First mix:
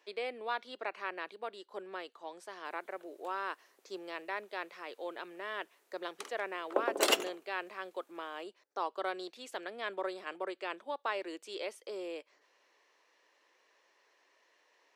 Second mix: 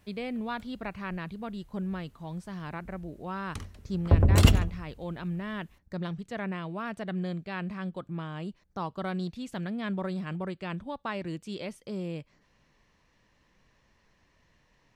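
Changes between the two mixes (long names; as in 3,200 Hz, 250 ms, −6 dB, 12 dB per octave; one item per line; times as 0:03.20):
background: entry −2.65 s
master: remove Butterworth high-pass 360 Hz 36 dB per octave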